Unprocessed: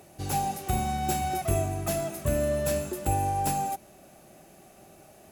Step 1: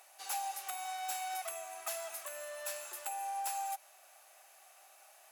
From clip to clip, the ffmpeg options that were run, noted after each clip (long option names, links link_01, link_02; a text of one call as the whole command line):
ffmpeg -i in.wav -af "acompressor=threshold=-28dB:ratio=6,highpass=frequency=820:width=0.5412,highpass=frequency=820:width=1.3066,volume=-2dB" out.wav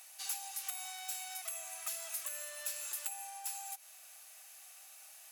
ffmpeg -i in.wav -af "acompressor=threshold=-42dB:ratio=5,tiltshelf=frequency=1400:gain=-9.5,volume=-1.5dB" out.wav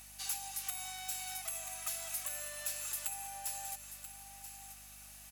ffmpeg -i in.wav -af "aecho=1:1:984:0.282,aeval=exprs='val(0)+0.000794*(sin(2*PI*50*n/s)+sin(2*PI*2*50*n/s)/2+sin(2*PI*3*50*n/s)/3+sin(2*PI*4*50*n/s)/4+sin(2*PI*5*50*n/s)/5)':channel_layout=same,volume=1dB" out.wav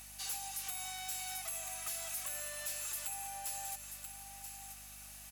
ffmpeg -i in.wav -af "asoftclip=type=tanh:threshold=-36dB,volume=2dB" out.wav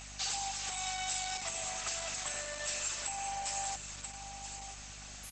ffmpeg -i in.wav -af "volume=8.5dB" -ar 48000 -c:a libopus -b:a 12k out.opus